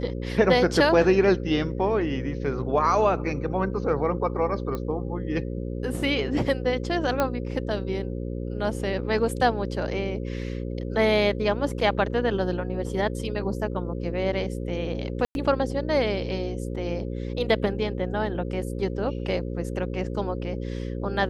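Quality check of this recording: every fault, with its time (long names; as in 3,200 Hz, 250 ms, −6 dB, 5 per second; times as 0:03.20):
mains buzz 60 Hz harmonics 9 −31 dBFS
0:04.75: click −18 dBFS
0:07.20: click −10 dBFS
0:15.25–0:15.35: drop-out 101 ms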